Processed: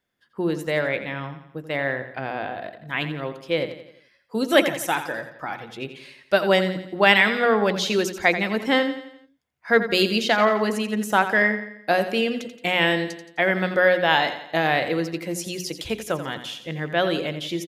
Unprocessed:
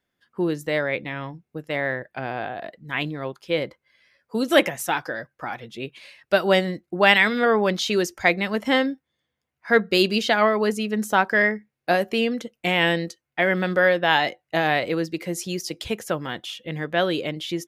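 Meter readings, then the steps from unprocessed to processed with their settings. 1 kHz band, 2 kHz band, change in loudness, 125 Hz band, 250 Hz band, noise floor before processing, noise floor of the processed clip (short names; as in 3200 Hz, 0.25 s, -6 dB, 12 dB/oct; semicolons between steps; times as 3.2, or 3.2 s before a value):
+0.5 dB, +0.5 dB, 0.0 dB, 0.0 dB, -0.5 dB, -82 dBFS, -60 dBFS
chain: notches 60/120/180/240/300/360/420 Hz; on a send: feedback echo 86 ms, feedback 48%, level -11 dB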